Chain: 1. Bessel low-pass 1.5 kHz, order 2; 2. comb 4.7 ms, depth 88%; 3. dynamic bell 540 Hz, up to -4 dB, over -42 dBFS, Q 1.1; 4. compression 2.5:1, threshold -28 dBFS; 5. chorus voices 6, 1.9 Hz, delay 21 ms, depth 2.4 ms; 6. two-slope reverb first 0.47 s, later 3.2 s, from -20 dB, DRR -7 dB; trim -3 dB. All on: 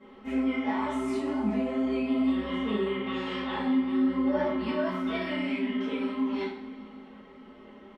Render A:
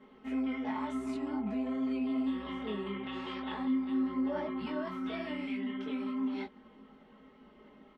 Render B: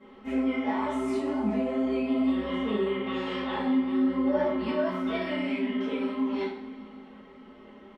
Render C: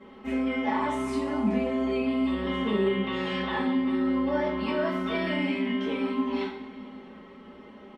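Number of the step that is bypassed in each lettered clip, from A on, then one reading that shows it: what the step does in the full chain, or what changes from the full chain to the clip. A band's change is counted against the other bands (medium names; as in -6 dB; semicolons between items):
6, crest factor change -2.0 dB; 3, 500 Hz band +2.5 dB; 5, momentary loudness spread change +10 LU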